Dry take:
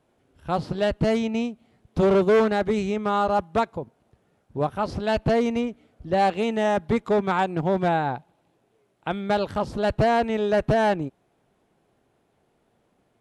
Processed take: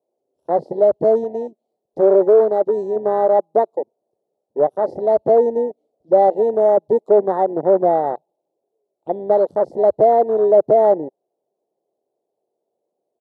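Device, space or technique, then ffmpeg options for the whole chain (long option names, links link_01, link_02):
parallel distortion: -filter_complex "[0:a]firequalizer=gain_entry='entry(260,0);entry(370,11);entry(580,14);entry(1600,-23);entry(4200,0);entry(8300,2)':delay=0.05:min_phase=1,asplit=2[link_01][link_02];[link_02]asoftclip=type=hard:threshold=-12dB,volume=-12.5dB[link_03];[link_01][link_03]amix=inputs=2:normalize=0,afwtdn=0.141,highpass=230,asettb=1/sr,asplit=3[link_04][link_05][link_06];[link_04]atrim=end=1.244[link_07];[link_05]atrim=start=1.24:end=2.96,asetpts=PTS-STARTPTS,afade=type=in:duration=0.004:curve=qsin,afade=type=out:start_time=1.716:duration=0.004:curve=qsin,lowshelf=frequency=370:gain=-6[link_08];[link_06]atrim=start=2.956[link_09];[link_07][link_08]acrossfade=duration=0.004:curve1=hsin:curve2=qsin[link_10];[link_10][link_09]acrossfade=duration=0.004:curve1=qsin:curve2=hsin,volume=-3dB"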